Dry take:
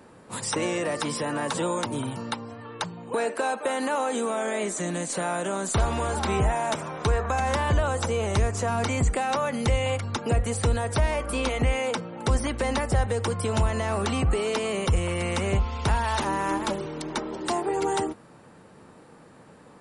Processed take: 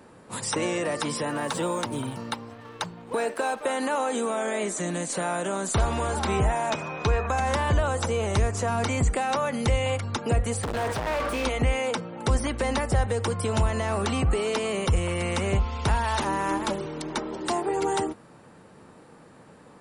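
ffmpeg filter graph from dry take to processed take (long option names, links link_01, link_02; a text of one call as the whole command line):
ffmpeg -i in.wav -filter_complex "[0:a]asettb=1/sr,asplit=3[link_01][link_02][link_03];[link_01]atrim=end=1.304[link_04];[link_02]atrim=start=1.3:end=3.65,asetpts=PTS-STARTPTS,afade=type=in:duration=0.004:curve=qsin,afade=type=out:start_time=2.346:duration=0.004:curve=qsin,aeval=exprs='sgn(val(0))*max(abs(val(0))-0.00398,0)':channel_layout=same,bandreject=frequency=7000:width=25[link_05];[link_03]atrim=start=3.646[link_06];[link_04][link_05]acrossfade=duration=0.004:curve1=hsin:curve2=qsin[link_07];[link_07][link_06]acrossfade=duration=0.004:curve1=qsin:curve2=hsin,asettb=1/sr,asplit=3[link_08][link_09][link_10];[link_08]atrim=end=6.704[link_11];[link_09]atrim=start=6.7:end=7.27,asetpts=PTS-STARTPTS,afade=type=in:duration=0.004:curve=qsin,afade=type=out:start_time=0.566:duration=0.004:curve=qsin,aeval=exprs='val(0)+0.0112*sin(2*PI*2500*n/s)':channel_layout=same,lowpass=frequency=6700:width=0.5412,lowpass=frequency=6700:width=1.3066[link_12];[link_10]atrim=start=7.266[link_13];[link_11][link_12]acrossfade=duration=0.004:curve1=hsin:curve2=qsin[link_14];[link_14][link_13]acrossfade=duration=0.004:curve1=qsin:curve2=hsin,asettb=1/sr,asplit=3[link_15][link_16][link_17];[link_15]atrim=end=10.634[link_18];[link_16]atrim=start=10.63:end=11.45,asetpts=PTS-STARTPTS,afade=type=in:duration=0.004:curve=qsin,afade=type=out:start_time=0.816:duration=0.004:curve=qsin,volume=28.5dB,asoftclip=hard,volume=-28.5dB,asplit=2[link_19][link_20];[link_20]highpass=frequency=720:poles=1,volume=30dB,asoftclip=type=tanh:threshold=-20.5dB[link_21];[link_19][link_21]amix=inputs=2:normalize=0,lowpass=frequency=1800:poles=1,volume=-6dB[link_22];[link_17]atrim=start=11.446[link_23];[link_18][link_22]acrossfade=duration=0.004:curve1=hsin:curve2=qsin[link_24];[link_24][link_23]acrossfade=duration=0.004:curve1=qsin:curve2=hsin" out.wav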